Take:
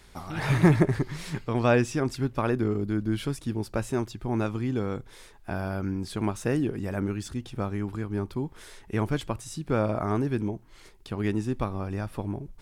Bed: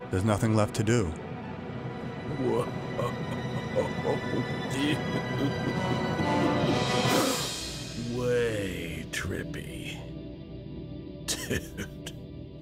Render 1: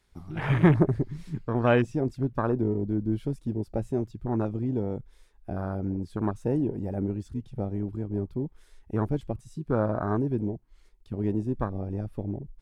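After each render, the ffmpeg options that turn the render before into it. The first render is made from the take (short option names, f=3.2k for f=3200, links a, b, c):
-af "afwtdn=0.0316"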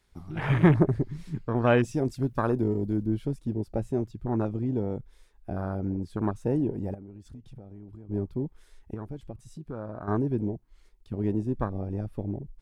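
-filter_complex "[0:a]asettb=1/sr,asplit=3[a][b][c];[a]atrim=end=1.834[d];[b]atrim=start=1.83:end=3.06,asetpts=PTS-STARTPTS,afade=t=in:d=0.004:c=qsin,afade=t=out:st=1.226:d=0.004:c=qsin,highshelf=f=3.3k:g=11[e];[c]atrim=start=3.056[f];[d][e]acrossfade=d=0.004:c1=hsin:c2=qsin[g];[g][f]acrossfade=d=0.004:c1=qsin:c2=hsin,asettb=1/sr,asplit=3[h][i][j];[h]atrim=end=6.944[k];[i]atrim=start=6.94:end=8.09,asetpts=PTS-STARTPTS,afade=t=in:d=0.004:c=qsin,afade=t=out:st=1.146:d=0.004:c=qsin,acompressor=threshold=-41dB:ratio=8:attack=3.2:release=140:knee=1:detection=peak[l];[j]atrim=start=8.086[m];[k][l]acrossfade=d=0.004:c1=hsin:c2=qsin[n];[n][m]acrossfade=d=0.004:c1=qsin:c2=hsin,asettb=1/sr,asplit=3[o][p][q];[o]atrim=end=8.944[r];[p]atrim=start=8.94:end=10.08,asetpts=PTS-STARTPTS,afade=t=in:d=0.004:c=qsin,afade=t=out:st=1.136:d=0.004:c=qsin,acompressor=threshold=-41dB:ratio=2:attack=3.2:release=140:knee=1:detection=peak[s];[q]atrim=start=10.076[t];[r][s]acrossfade=d=0.004:c1=hsin:c2=qsin[u];[u][t]acrossfade=d=0.004:c1=qsin:c2=hsin"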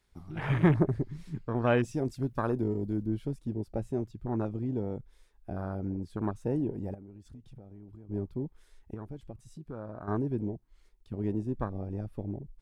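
-af "volume=-4dB"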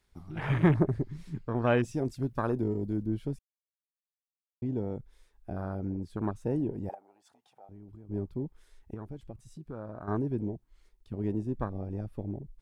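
-filter_complex "[0:a]asettb=1/sr,asplit=3[a][b][c];[a]atrim=end=6.894[d];[b]atrim=start=6.89:end=7.69,asetpts=PTS-STARTPTS,afade=t=in:d=0.004:c=qsin,afade=t=out:st=0.796:d=0.004:c=qsin,highpass=f=780:t=q:w=4.7[e];[c]atrim=start=7.686[f];[d][e]acrossfade=d=0.004:c1=hsin:c2=qsin[g];[g][f]acrossfade=d=0.004:c1=qsin:c2=hsin,asplit=3[h][i][j];[h]atrim=end=3.39,asetpts=PTS-STARTPTS,afade=t=out:st=3.386:d=0.004:c=hsin[k];[i]atrim=start=3.39:end=4.62,asetpts=PTS-STARTPTS,volume=0[l];[j]atrim=start=4.62,asetpts=PTS-STARTPTS,afade=t=in:d=0.004:c=hsin[m];[k][l][m]concat=n=3:v=0:a=1"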